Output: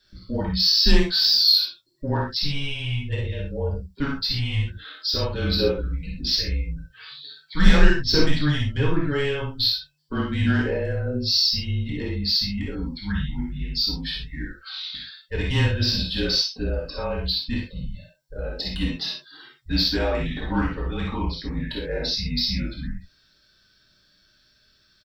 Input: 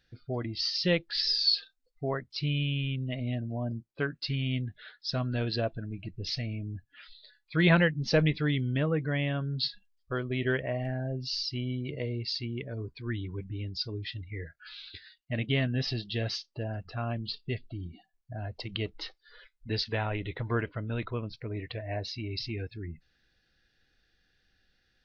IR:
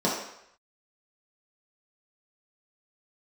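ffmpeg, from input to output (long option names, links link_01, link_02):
-filter_complex "[0:a]crystalizer=i=6:c=0,asoftclip=type=tanh:threshold=-17.5dB,aecho=1:1:51|63:0.501|0.501[link_01];[1:a]atrim=start_sample=2205,atrim=end_sample=3528[link_02];[link_01][link_02]afir=irnorm=-1:irlink=0,afreqshift=-150,volume=-9dB"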